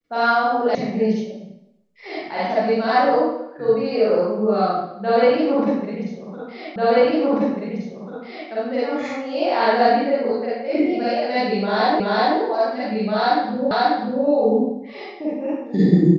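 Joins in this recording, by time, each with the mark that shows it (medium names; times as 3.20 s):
0.75 s: sound stops dead
6.76 s: repeat of the last 1.74 s
12.00 s: repeat of the last 0.38 s
13.71 s: repeat of the last 0.54 s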